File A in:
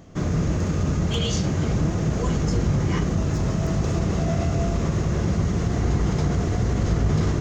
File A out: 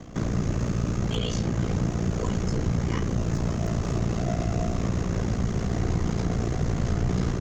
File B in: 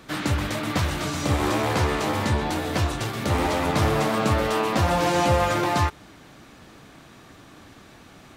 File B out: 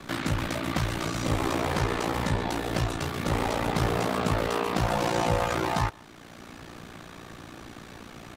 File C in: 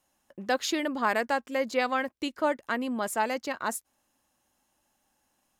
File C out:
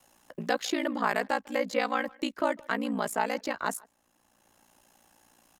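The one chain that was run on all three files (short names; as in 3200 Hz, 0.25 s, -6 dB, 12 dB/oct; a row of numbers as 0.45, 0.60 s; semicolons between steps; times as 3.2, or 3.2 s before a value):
speakerphone echo 0.15 s, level -26 dB; ring modulator 29 Hz; three-band squash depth 40%; normalise peaks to -12 dBFS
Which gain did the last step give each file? -1.0, -1.5, +2.0 dB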